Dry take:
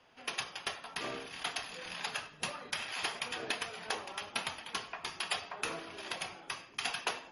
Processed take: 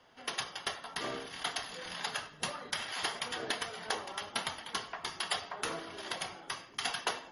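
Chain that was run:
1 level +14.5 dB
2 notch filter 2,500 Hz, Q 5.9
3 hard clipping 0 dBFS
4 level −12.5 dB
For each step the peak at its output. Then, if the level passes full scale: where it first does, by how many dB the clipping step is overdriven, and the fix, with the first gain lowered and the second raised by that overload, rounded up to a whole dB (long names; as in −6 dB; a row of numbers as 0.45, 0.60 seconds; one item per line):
−3.5, −4.5, −4.5, −17.0 dBFS
no step passes full scale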